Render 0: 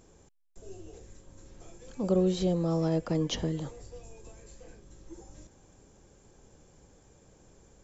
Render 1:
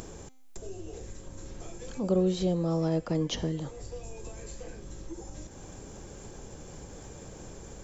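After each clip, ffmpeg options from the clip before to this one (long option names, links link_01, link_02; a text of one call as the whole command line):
ffmpeg -i in.wav -af "bandreject=frequency=259.9:width_type=h:width=4,bandreject=frequency=519.8:width_type=h:width=4,bandreject=frequency=779.7:width_type=h:width=4,bandreject=frequency=1039.6:width_type=h:width=4,bandreject=frequency=1299.5:width_type=h:width=4,bandreject=frequency=1559.4:width_type=h:width=4,bandreject=frequency=1819.3:width_type=h:width=4,bandreject=frequency=2079.2:width_type=h:width=4,bandreject=frequency=2339.1:width_type=h:width=4,bandreject=frequency=2599:width_type=h:width=4,bandreject=frequency=2858.9:width_type=h:width=4,bandreject=frequency=3118.8:width_type=h:width=4,bandreject=frequency=3378.7:width_type=h:width=4,bandreject=frequency=3638.6:width_type=h:width=4,bandreject=frequency=3898.5:width_type=h:width=4,bandreject=frequency=4158.4:width_type=h:width=4,bandreject=frequency=4418.3:width_type=h:width=4,bandreject=frequency=4678.2:width_type=h:width=4,bandreject=frequency=4938.1:width_type=h:width=4,bandreject=frequency=5198:width_type=h:width=4,bandreject=frequency=5457.9:width_type=h:width=4,bandreject=frequency=5717.8:width_type=h:width=4,bandreject=frequency=5977.7:width_type=h:width=4,bandreject=frequency=6237.6:width_type=h:width=4,bandreject=frequency=6497.5:width_type=h:width=4,bandreject=frequency=6757.4:width_type=h:width=4,bandreject=frequency=7017.3:width_type=h:width=4,bandreject=frequency=7277.2:width_type=h:width=4,bandreject=frequency=7537.1:width_type=h:width=4,bandreject=frequency=7797:width_type=h:width=4,bandreject=frequency=8056.9:width_type=h:width=4,bandreject=frequency=8316.8:width_type=h:width=4,bandreject=frequency=8576.7:width_type=h:width=4,bandreject=frequency=8836.6:width_type=h:width=4,bandreject=frequency=9096.5:width_type=h:width=4,acompressor=mode=upward:threshold=-31dB:ratio=2.5" out.wav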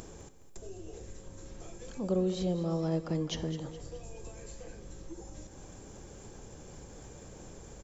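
ffmpeg -i in.wav -af "aecho=1:1:209|418|627|836:0.224|0.094|0.0395|0.0166,volume=-4dB" out.wav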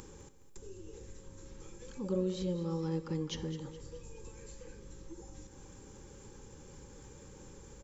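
ffmpeg -i in.wav -af "asuperstop=centerf=670:order=20:qfactor=3.6,volume=-3.5dB" out.wav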